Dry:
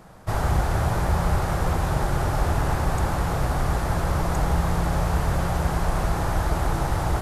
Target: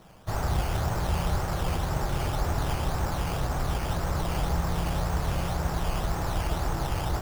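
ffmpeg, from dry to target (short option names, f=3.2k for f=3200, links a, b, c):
-af "acrusher=samples=9:mix=1:aa=0.000001:lfo=1:lforange=5.4:lforate=1.9,volume=-5dB"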